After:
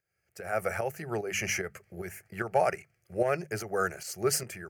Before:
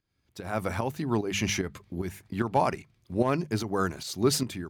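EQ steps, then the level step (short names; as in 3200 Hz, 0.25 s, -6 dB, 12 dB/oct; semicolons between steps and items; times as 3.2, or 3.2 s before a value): HPF 310 Hz 6 dB/oct; fixed phaser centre 1000 Hz, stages 6; +3.5 dB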